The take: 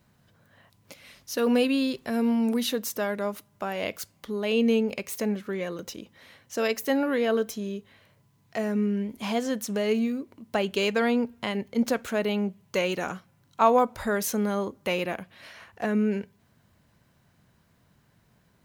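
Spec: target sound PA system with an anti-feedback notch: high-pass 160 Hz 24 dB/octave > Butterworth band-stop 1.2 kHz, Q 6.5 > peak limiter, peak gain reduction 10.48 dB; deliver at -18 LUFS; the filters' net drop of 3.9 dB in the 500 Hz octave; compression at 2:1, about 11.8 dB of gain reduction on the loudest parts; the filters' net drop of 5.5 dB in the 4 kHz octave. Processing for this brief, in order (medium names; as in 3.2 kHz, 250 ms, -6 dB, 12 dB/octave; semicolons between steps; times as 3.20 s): peaking EQ 500 Hz -4.5 dB; peaking EQ 4 kHz -8 dB; compression 2:1, threshold -39 dBFS; high-pass 160 Hz 24 dB/octave; Butterworth band-stop 1.2 kHz, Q 6.5; trim +24 dB; peak limiter -8.5 dBFS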